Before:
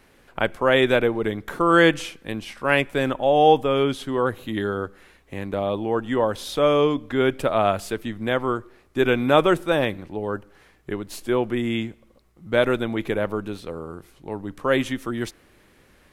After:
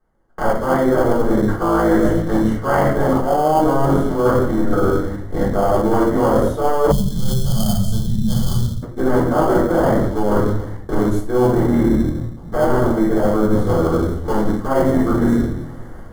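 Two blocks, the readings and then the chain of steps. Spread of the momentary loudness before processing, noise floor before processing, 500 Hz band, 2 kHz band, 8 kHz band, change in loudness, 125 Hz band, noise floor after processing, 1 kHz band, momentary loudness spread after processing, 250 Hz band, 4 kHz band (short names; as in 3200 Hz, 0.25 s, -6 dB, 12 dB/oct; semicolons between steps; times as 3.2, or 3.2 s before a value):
16 LU, -57 dBFS, +4.0 dB, -3.5 dB, +7.5 dB, +4.5 dB, +11.5 dB, -33 dBFS, +4.5 dB, 6 LU, +8.5 dB, -5.0 dB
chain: cycle switcher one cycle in 3, muted; EQ curve 1300 Hz 0 dB, 4200 Hz -23 dB, 6200 Hz -11 dB; AGC gain up to 8 dB; shoebox room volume 130 m³, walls mixed, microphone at 3.7 m; in parallel at -11.5 dB: sample-rate reducer 1900 Hz, jitter 0%; on the sum: spectral gain 6.91–8.83, 230–3000 Hz -25 dB; dynamic EQ 4200 Hz, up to -5 dB, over -27 dBFS, Q 0.77; Butterworth band-stop 2500 Hz, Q 3.3; gate with hold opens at -24 dBFS; reverse; compressor 12:1, threshold -10 dBFS, peak gain reduction 16 dB; reverse; gain -1.5 dB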